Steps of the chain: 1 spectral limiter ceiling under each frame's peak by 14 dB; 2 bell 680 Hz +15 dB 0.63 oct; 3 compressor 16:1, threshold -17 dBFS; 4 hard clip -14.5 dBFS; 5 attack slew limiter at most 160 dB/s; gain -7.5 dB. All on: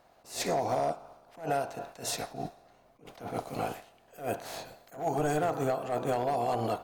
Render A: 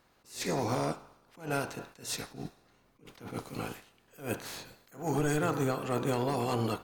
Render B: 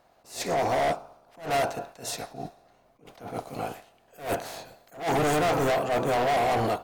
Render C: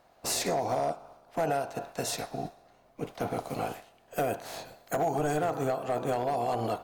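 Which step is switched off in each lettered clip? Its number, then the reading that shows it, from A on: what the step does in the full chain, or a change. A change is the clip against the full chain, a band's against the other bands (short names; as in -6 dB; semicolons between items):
2, 1 kHz band -5.5 dB; 3, mean gain reduction 6.5 dB; 5, 8 kHz band +2.5 dB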